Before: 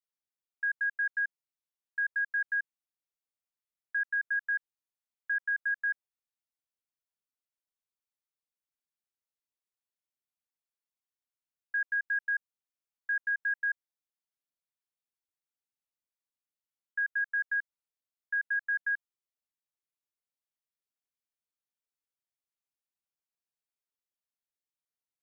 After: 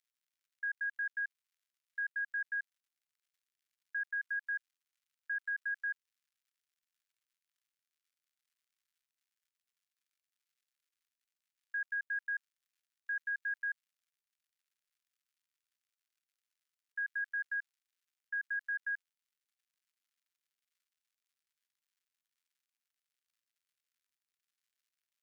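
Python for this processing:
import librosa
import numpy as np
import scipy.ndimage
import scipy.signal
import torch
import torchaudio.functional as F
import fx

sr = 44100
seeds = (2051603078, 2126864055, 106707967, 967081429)

y = fx.dmg_crackle(x, sr, seeds[0], per_s=180.0, level_db=-65.0)
y = scipy.signal.sosfilt(scipy.signal.butter(4, 1400.0, 'highpass', fs=sr, output='sos'), y)
y = y * librosa.db_to_amplitude(-5.0)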